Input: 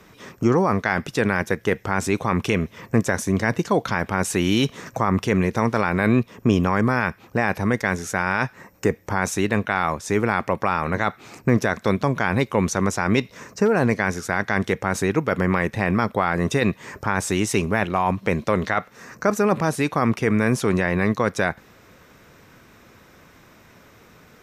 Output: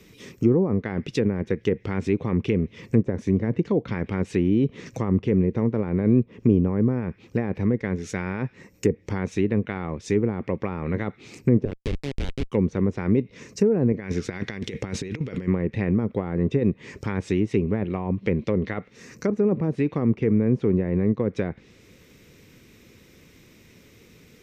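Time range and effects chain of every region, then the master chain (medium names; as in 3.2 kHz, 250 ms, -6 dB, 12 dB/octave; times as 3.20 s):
11.65–12.52 s: bass shelf 200 Hz -5.5 dB + Schmitt trigger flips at -19 dBFS
13.92–15.48 s: compressor with a negative ratio -26 dBFS, ratio -0.5 + treble shelf 11 kHz -8 dB
whole clip: low-pass that closes with the level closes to 820 Hz, closed at -16 dBFS; high-order bell 1 kHz -12.5 dB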